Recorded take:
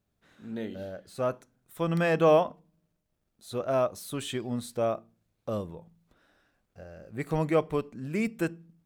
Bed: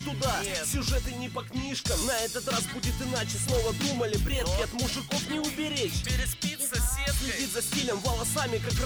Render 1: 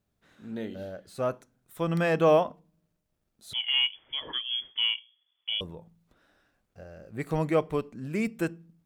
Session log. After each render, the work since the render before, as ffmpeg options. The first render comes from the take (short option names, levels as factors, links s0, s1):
-filter_complex "[0:a]asettb=1/sr,asplit=3[s0][s1][s2];[s0]atrim=end=3.534[s3];[s1]atrim=start=3.53:end=5.61,asetpts=PTS-STARTPTS,afade=t=in:d=0.004:c=qsin,afade=t=out:st=2.076:d=0.004:c=qsin,lowpass=f=3000:t=q:w=0.5098,lowpass=f=3000:t=q:w=0.6013,lowpass=f=3000:t=q:w=0.9,lowpass=f=3000:t=q:w=2.563,afreqshift=-3500[s4];[s2]atrim=start=5.606[s5];[s3][s4]acrossfade=d=0.004:c1=hsin:c2=qsin[s6];[s6][s5]acrossfade=d=0.004:c1=qsin:c2=hsin"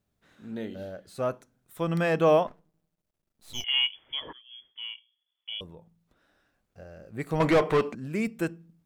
-filter_complex "[0:a]asettb=1/sr,asplit=3[s0][s1][s2];[s0]atrim=end=2.474[s3];[s1]atrim=start=2.47:end=3.64,asetpts=PTS-STARTPTS,afade=t=in:d=0.004:c=qsin,afade=t=out:st=1.166:d=0.004:c=qsin,aeval=exprs='max(val(0),0)':c=same[s4];[s2]atrim=start=3.636[s5];[s3][s4]acrossfade=d=0.004:c1=hsin:c2=qsin[s6];[s6][s5]acrossfade=d=0.004:c1=qsin:c2=hsin,asettb=1/sr,asplit=3[s7][s8][s9];[s7]atrim=end=7.404[s10];[s8]atrim=start=7.4:end=7.95,asetpts=PTS-STARTPTS,afade=t=in:d=0.004:c=qsin,afade=t=out:st=0.546:d=0.004:c=qsin,asplit=2[s11][s12];[s12]highpass=f=720:p=1,volume=20,asoftclip=type=tanh:threshold=0.211[s13];[s11][s13]amix=inputs=2:normalize=0,lowpass=f=2500:p=1,volume=0.501[s14];[s9]atrim=start=7.946[s15];[s10][s14]acrossfade=d=0.004:c1=hsin:c2=qsin[s16];[s16][s15]acrossfade=d=0.004:c1=qsin:c2=hsin,asplit=2[s17][s18];[s17]atrim=end=4.33,asetpts=PTS-STARTPTS,afade=t=out:st=4.326:d=0.004:c=hsin:silence=0.0749894[s19];[s18]atrim=start=4.33,asetpts=PTS-STARTPTS,afade=t=in:d=2.56:silence=0.0749894[s20];[s19][s20]concat=n=2:v=0:a=1"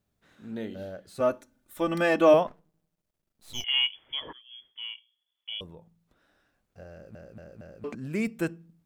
-filter_complex "[0:a]asettb=1/sr,asplit=3[s0][s1][s2];[s0]atrim=end=1.204[s3];[s1]atrim=start=1.2:end=2.34,asetpts=PTS-STARTPTS,afade=t=in:d=0.004:c=qsin,afade=t=out:st=1.136:d=0.004:c=qsin,aecho=1:1:3.4:0.93,atrim=end_sample=50274[s4];[s2]atrim=start=2.336[s5];[s3][s4]acrossfade=d=0.004:c1=hsin:c2=qsin[s6];[s6][s5]acrossfade=d=0.004:c1=qsin:c2=hsin,asplit=5[s7][s8][s9][s10][s11];[s7]atrim=end=7.152[s12];[s8]atrim=start=6.918:end=7.152[s13];[s9]atrim=start=6.918:end=7.152[s14];[s10]atrim=start=6.918:end=7.152[s15];[s11]atrim=start=7.838[s16];[s12][s13]acrossfade=d=0.004:c1=hsin:c2=hsin[s17];[s17][s14]acrossfade=d=0.004:c1=hsin:c2=hsin[s18];[s18][s15]acrossfade=d=0.004:c1=hsin:c2=hsin[s19];[s19][s16]acrossfade=d=0.004:c1=hsin:c2=hsin"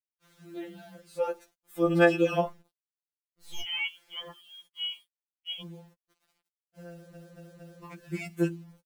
-af "acrusher=bits=9:mix=0:aa=0.000001,afftfilt=real='re*2.83*eq(mod(b,8),0)':imag='im*2.83*eq(mod(b,8),0)':win_size=2048:overlap=0.75"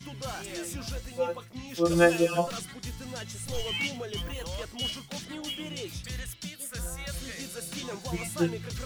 -filter_complex "[1:a]volume=0.376[s0];[0:a][s0]amix=inputs=2:normalize=0"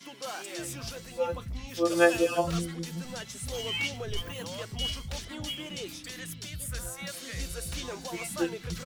-filter_complex "[0:a]acrossover=split=240[s0][s1];[s0]adelay=580[s2];[s2][s1]amix=inputs=2:normalize=0"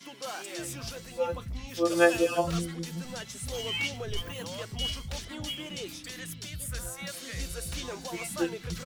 -af anull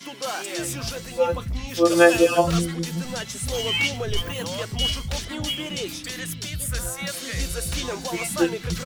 -af "volume=2.66,alimiter=limit=0.891:level=0:latency=1"